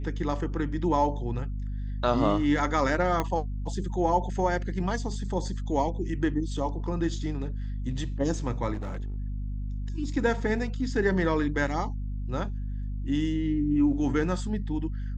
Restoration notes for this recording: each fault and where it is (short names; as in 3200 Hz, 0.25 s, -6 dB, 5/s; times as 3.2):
hum 50 Hz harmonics 5 -32 dBFS
3.2 pop -13 dBFS
8.73–9.16 clipped -30 dBFS